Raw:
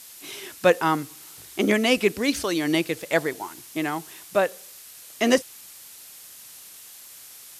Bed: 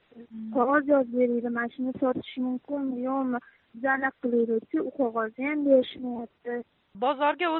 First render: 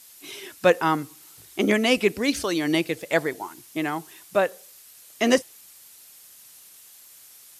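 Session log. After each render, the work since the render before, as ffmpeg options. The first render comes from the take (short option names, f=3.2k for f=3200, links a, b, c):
-af "afftdn=nr=6:nf=-45"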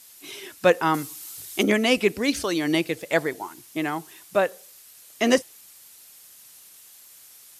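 -filter_complex "[0:a]asettb=1/sr,asplit=3[a][b][c];[a]atrim=end=0.944[d];[b]atrim=start=0.94:end=1.63,asetpts=PTS-STARTPTS,afade=t=in:d=0.004:c=qsin,afade=t=out:st=0.686:d=0.004:c=qsin,highshelf=f=2.8k:g=10.5[e];[c]atrim=start=1.626[f];[d][e]acrossfade=d=0.004:c1=hsin:c2=qsin[g];[g][f]acrossfade=d=0.004:c1=qsin:c2=hsin"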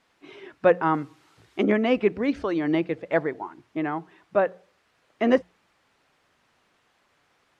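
-af "lowpass=1.6k,bandreject=f=60:t=h:w=6,bandreject=f=120:t=h:w=6,bandreject=f=180:t=h:w=6"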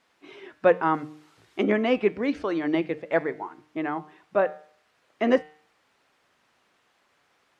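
-af "lowshelf=f=130:g=-8.5,bandreject=f=152.4:t=h:w=4,bandreject=f=304.8:t=h:w=4,bandreject=f=457.2:t=h:w=4,bandreject=f=609.6:t=h:w=4,bandreject=f=762:t=h:w=4,bandreject=f=914.4:t=h:w=4,bandreject=f=1.0668k:t=h:w=4,bandreject=f=1.2192k:t=h:w=4,bandreject=f=1.3716k:t=h:w=4,bandreject=f=1.524k:t=h:w=4,bandreject=f=1.6764k:t=h:w=4,bandreject=f=1.8288k:t=h:w=4,bandreject=f=1.9812k:t=h:w=4,bandreject=f=2.1336k:t=h:w=4,bandreject=f=2.286k:t=h:w=4,bandreject=f=2.4384k:t=h:w=4,bandreject=f=2.5908k:t=h:w=4,bandreject=f=2.7432k:t=h:w=4,bandreject=f=2.8956k:t=h:w=4,bandreject=f=3.048k:t=h:w=4,bandreject=f=3.2004k:t=h:w=4,bandreject=f=3.3528k:t=h:w=4,bandreject=f=3.5052k:t=h:w=4,bandreject=f=3.6576k:t=h:w=4,bandreject=f=3.81k:t=h:w=4,bandreject=f=3.9624k:t=h:w=4,bandreject=f=4.1148k:t=h:w=4,bandreject=f=4.2672k:t=h:w=4,bandreject=f=4.4196k:t=h:w=4,bandreject=f=4.572k:t=h:w=4,bandreject=f=4.7244k:t=h:w=4"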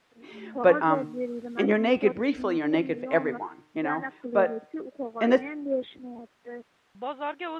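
-filter_complex "[1:a]volume=-8dB[a];[0:a][a]amix=inputs=2:normalize=0"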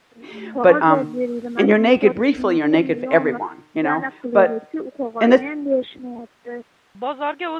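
-af "volume=8.5dB,alimiter=limit=-1dB:level=0:latency=1"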